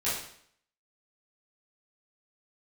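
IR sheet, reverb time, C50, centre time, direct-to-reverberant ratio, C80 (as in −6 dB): 0.65 s, 2.0 dB, 53 ms, −11.5 dB, 6.0 dB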